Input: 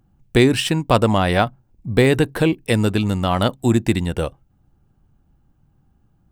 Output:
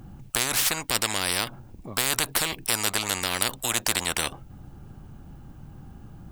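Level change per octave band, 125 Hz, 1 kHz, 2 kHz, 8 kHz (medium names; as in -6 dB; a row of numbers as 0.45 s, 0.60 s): -18.5 dB, -8.5 dB, -3.0 dB, +10.0 dB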